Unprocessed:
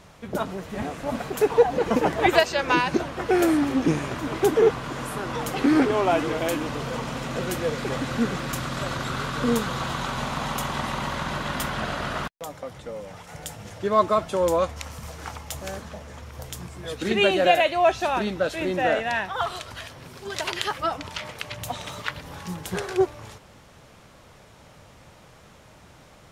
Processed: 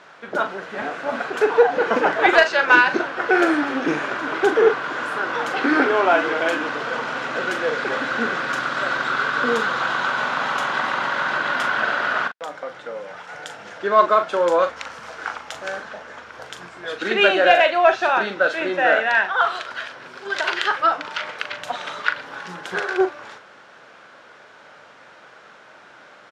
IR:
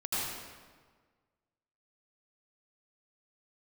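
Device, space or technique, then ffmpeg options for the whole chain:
intercom: -filter_complex "[0:a]highpass=370,lowpass=4400,equalizer=frequency=1500:width_type=o:width=0.4:gain=10.5,asoftclip=type=tanh:threshold=-4.5dB,asplit=2[link_01][link_02];[link_02]adelay=40,volume=-9dB[link_03];[link_01][link_03]amix=inputs=2:normalize=0,volume=4dB"

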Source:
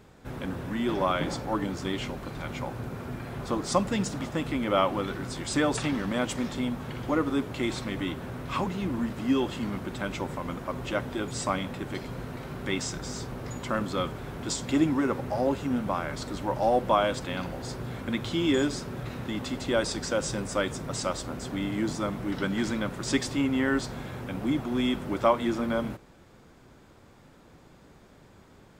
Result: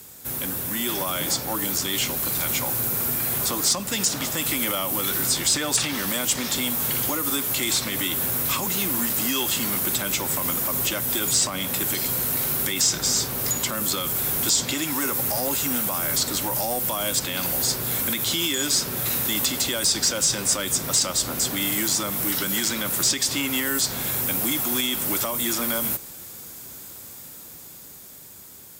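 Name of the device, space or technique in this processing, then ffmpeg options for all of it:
FM broadcast chain: -filter_complex "[0:a]highpass=53,dynaudnorm=framelen=270:gausssize=13:maxgain=5dB,acrossover=split=310|710|5400[link_01][link_02][link_03][link_04];[link_01]acompressor=threshold=-33dB:ratio=4[link_05];[link_02]acompressor=threshold=-34dB:ratio=4[link_06];[link_03]acompressor=threshold=-30dB:ratio=4[link_07];[link_04]acompressor=threshold=-52dB:ratio=4[link_08];[link_05][link_06][link_07][link_08]amix=inputs=4:normalize=0,aemphasis=mode=production:type=75fm,alimiter=limit=-19.5dB:level=0:latency=1:release=45,asoftclip=type=hard:threshold=-22.5dB,lowpass=frequency=15000:width=0.5412,lowpass=frequency=15000:width=1.3066,aemphasis=mode=production:type=75fm,volume=1.5dB"

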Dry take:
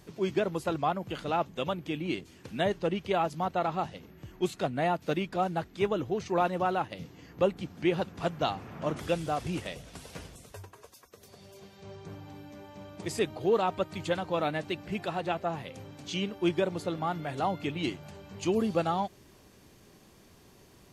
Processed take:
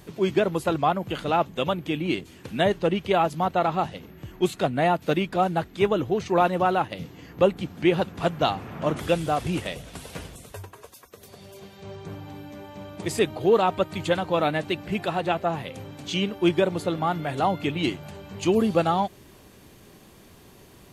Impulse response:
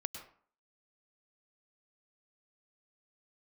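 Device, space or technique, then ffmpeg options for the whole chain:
exciter from parts: -filter_complex "[0:a]asplit=2[link_01][link_02];[link_02]highpass=3800,asoftclip=type=tanh:threshold=-34.5dB,highpass=frequency=3800:width=0.5412,highpass=frequency=3800:width=1.3066,volume=-8.5dB[link_03];[link_01][link_03]amix=inputs=2:normalize=0,volume=6.5dB"

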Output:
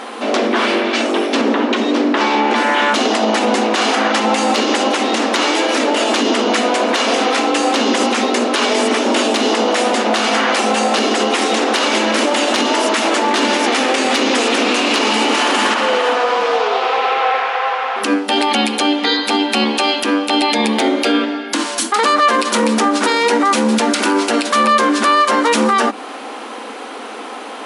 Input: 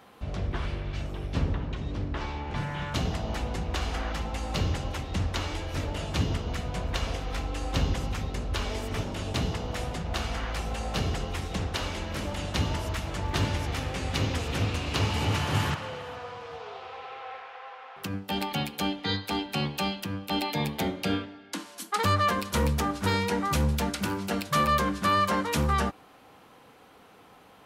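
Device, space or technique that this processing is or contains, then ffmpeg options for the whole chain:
loud club master: -af "bandreject=frequency=50:width_type=h:width=6,bandreject=frequency=100:width_type=h:width=6,bandreject=frequency=150:width_type=h:width=6,bandreject=frequency=200:width_type=h:width=6,bandreject=frequency=250:width_type=h:width=6,afftfilt=real='re*between(b*sr/4096,210,11000)':imag='im*between(b*sr/4096,210,11000)':win_size=4096:overlap=0.75,acompressor=threshold=-35dB:ratio=2,asoftclip=type=hard:threshold=-22.5dB,alimiter=level_in=30.5dB:limit=-1dB:release=50:level=0:latency=1,volume=-5dB"

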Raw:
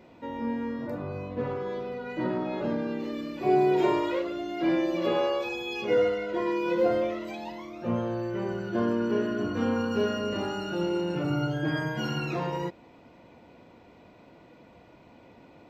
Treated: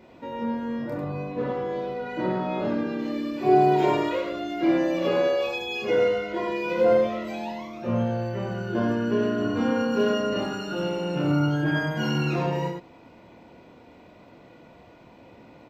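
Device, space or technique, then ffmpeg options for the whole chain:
slapback doubling: -filter_complex "[0:a]asplit=3[link_01][link_02][link_03];[link_02]adelay=27,volume=-4dB[link_04];[link_03]adelay=96,volume=-4.5dB[link_05];[link_01][link_04][link_05]amix=inputs=3:normalize=0,volume=1dB"

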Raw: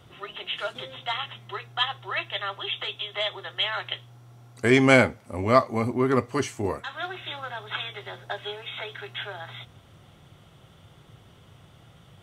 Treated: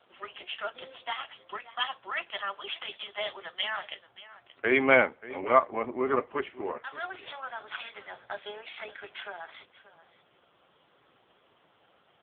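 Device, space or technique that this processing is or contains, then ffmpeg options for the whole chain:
satellite phone: -filter_complex "[0:a]asplit=3[link_01][link_02][link_03];[link_01]afade=type=out:start_time=6.63:duration=0.02[link_04];[link_02]asubboost=boost=7.5:cutoff=74,afade=type=in:start_time=6.63:duration=0.02,afade=type=out:start_time=8.55:duration=0.02[link_05];[link_03]afade=type=in:start_time=8.55:duration=0.02[link_06];[link_04][link_05][link_06]amix=inputs=3:normalize=0,highpass=400,lowpass=3300,aecho=1:1:579:0.141,volume=-1dB" -ar 8000 -c:a libopencore_amrnb -b:a 5900

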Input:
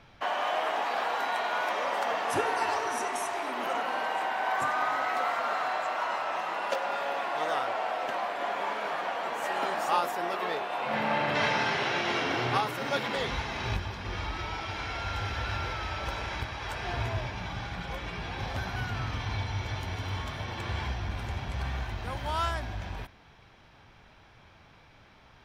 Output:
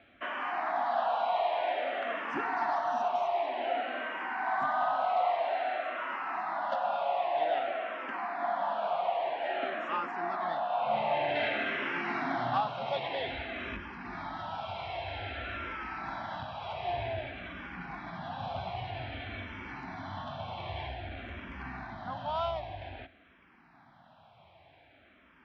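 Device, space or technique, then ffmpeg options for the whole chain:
barber-pole phaser into a guitar amplifier: -filter_complex "[0:a]asplit=2[link_01][link_02];[link_02]afreqshift=-0.52[link_03];[link_01][link_03]amix=inputs=2:normalize=1,asoftclip=type=tanh:threshold=-21.5dB,highpass=96,equalizer=frequency=110:width_type=q:width=4:gain=-5,equalizer=frequency=260:width_type=q:width=4:gain=5,equalizer=frequency=450:width_type=q:width=4:gain=-8,equalizer=frequency=690:width_type=q:width=4:gain=9,lowpass=frequency=3700:width=0.5412,lowpass=frequency=3700:width=1.3066,volume=-1dB"

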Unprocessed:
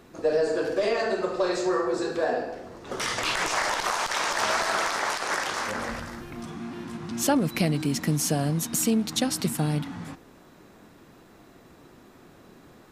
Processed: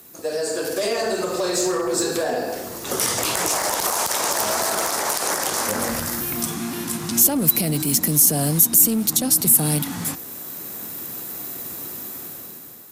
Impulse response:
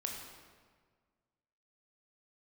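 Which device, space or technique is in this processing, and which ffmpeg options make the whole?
FM broadcast chain: -filter_complex "[0:a]highpass=72,dynaudnorm=framelen=350:gausssize=5:maxgain=13dB,acrossover=split=190|910[link_01][link_02][link_03];[link_01]acompressor=threshold=-22dB:ratio=4[link_04];[link_02]acompressor=threshold=-18dB:ratio=4[link_05];[link_03]acompressor=threshold=-31dB:ratio=4[link_06];[link_04][link_05][link_06]amix=inputs=3:normalize=0,aemphasis=mode=production:type=50fm,alimiter=limit=-12dB:level=0:latency=1:release=25,asoftclip=type=hard:threshold=-14.5dB,lowpass=frequency=15000:width=0.5412,lowpass=frequency=15000:width=1.3066,aemphasis=mode=production:type=50fm,volume=-2dB"

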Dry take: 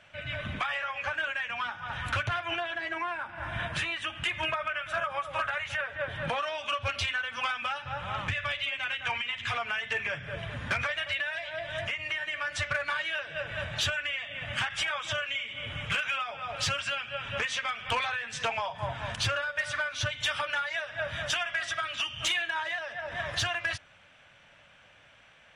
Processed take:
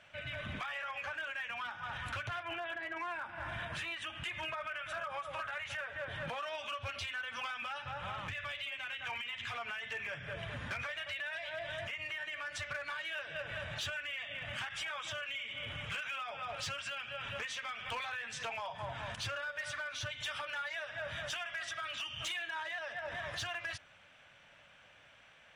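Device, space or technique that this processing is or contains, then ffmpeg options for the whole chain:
limiter into clipper: -filter_complex "[0:a]asplit=3[link_01][link_02][link_03];[link_01]afade=type=out:start_time=2.42:duration=0.02[link_04];[link_02]lowpass=2800,afade=type=in:start_time=2.42:duration=0.02,afade=type=out:start_time=2.95:duration=0.02[link_05];[link_03]afade=type=in:start_time=2.95:duration=0.02[link_06];[link_04][link_05][link_06]amix=inputs=3:normalize=0,lowshelf=frequency=210:gain=-3,alimiter=level_in=5dB:limit=-24dB:level=0:latency=1:release=82,volume=-5dB,asoftclip=type=hard:threshold=-30.5dB,volume=-3dB"

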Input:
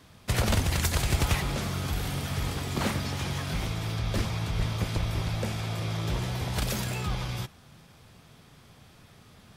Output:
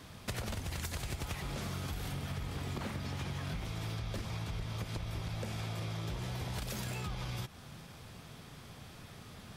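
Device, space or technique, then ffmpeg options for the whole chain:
serial compression, peaks first: -filter_complex "[0:a]asettb=1/sr,asplit=3[link_01][link_02][link_03];[link_01]atrim=end=2.124[link_04];[link_02]atrim=start=2.12:end=3.65,asetpts=PTS-STARTPTS,afade=type=in:duration=0.004:curve=qsin,afade=type=out:start_time=1.526:duration=0.004:curve=qsin,bass=frequency=250:gain=2,treble=frequency=4000:gain=-4[link_05];[link_03]atrim=start=3.646[link_06];[link_04][link_05]acrossfade=duration=0.004:curve1=hsin:curve2=qsin[link_07];[link_07][link_06]acrossfade=duration=0.004:curve1=qsin:curve2=hsin,acompressor=threshold=-34dB:ratio=6,acompressor=threshold=-42dB:ratio=2,volume=3dB"

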